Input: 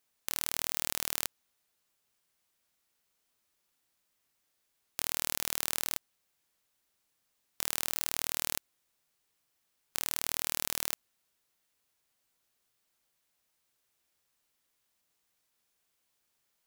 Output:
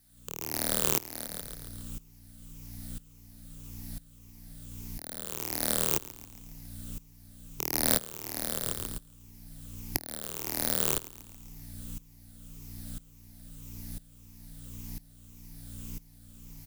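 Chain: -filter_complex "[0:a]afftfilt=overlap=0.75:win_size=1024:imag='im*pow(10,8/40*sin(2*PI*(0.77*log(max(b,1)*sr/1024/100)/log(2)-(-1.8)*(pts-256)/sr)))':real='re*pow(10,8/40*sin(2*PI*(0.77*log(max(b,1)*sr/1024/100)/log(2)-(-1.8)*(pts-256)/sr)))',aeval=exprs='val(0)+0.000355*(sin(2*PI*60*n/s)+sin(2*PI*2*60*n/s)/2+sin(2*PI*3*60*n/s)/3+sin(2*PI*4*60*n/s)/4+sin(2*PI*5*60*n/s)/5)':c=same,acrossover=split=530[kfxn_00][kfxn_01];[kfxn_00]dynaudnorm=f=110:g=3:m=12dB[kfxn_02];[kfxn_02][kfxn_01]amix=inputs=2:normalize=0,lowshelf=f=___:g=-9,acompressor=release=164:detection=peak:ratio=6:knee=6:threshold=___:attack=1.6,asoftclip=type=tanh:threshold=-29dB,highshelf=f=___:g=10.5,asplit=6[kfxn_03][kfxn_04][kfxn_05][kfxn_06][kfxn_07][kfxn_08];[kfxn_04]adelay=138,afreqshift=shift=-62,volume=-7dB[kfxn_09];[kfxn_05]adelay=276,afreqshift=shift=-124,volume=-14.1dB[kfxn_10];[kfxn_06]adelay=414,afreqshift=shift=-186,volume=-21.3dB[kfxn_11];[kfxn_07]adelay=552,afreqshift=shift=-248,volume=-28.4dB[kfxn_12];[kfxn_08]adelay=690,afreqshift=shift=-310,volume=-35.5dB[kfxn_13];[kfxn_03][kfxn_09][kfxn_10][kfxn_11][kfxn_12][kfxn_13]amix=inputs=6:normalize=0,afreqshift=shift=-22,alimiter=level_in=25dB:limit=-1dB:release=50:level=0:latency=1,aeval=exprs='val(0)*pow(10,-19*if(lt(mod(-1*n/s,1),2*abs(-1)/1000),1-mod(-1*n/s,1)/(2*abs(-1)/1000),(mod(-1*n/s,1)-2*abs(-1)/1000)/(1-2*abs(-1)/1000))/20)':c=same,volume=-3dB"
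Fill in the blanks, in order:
63, -34dB, 4900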